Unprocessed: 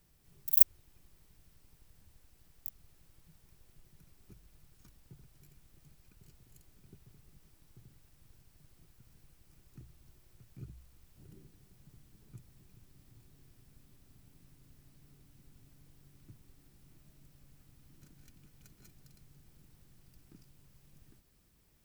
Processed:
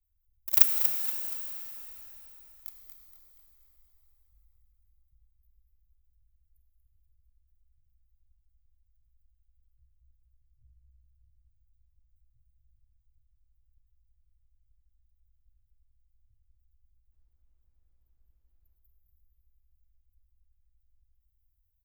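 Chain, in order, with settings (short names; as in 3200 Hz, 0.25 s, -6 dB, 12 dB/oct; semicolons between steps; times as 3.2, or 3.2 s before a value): spectral gate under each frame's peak -25 dB strong; inverse Chebyshev band-stop 180–7000 Hz, stop band 50 dB; in parallel at -4.5 dB: companded quantiser 2-bit; 17.11–18.75 on the sum: added noise brown -79 dBFS; on a send: feedback echo 0.237 s, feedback 43%, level -8.5 dB; on the sum: plate-style reverb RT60 4.2 s, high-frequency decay 0.9×, DRR 3.5 dB; gain -4.5 dB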